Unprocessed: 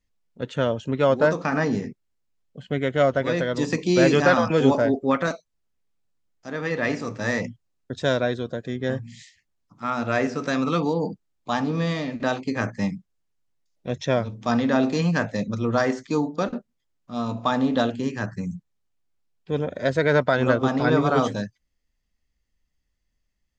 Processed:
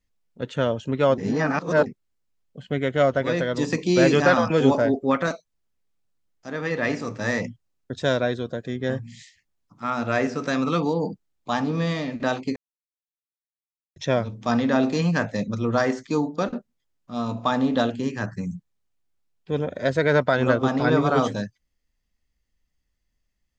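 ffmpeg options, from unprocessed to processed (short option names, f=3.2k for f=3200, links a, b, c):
-filter_complex "[0:a]asplit=5[a][b][c][d][e];[a]atrim=end=1.182[f];[b]atrim=start=1.178:end=1.862,asetpts=PTS-STARTPTS,areverse[g];[c]atrim=start=1.858:end=12.56,asetpts=PTS-STARTPTS,afade=t=out:st=10.698:d=0.004:c=hsin[h];[d]atrim=start=12.56:end=13.96,asetpts=PTS-STARTPTS,volume=0[i];[e]atrim=start=13.96,asetpts=PTS-STARTPTS,afade=t=in:d=0.004:c=hsin[j];[f][g]acrossfade=d=0.004:c1=hsin:c2=hsin[k];[h][i][j]concat=n=3:v=0:a=1[l];[k][l]acrossfade=d=0.004:c1=hsin:c2=hsin"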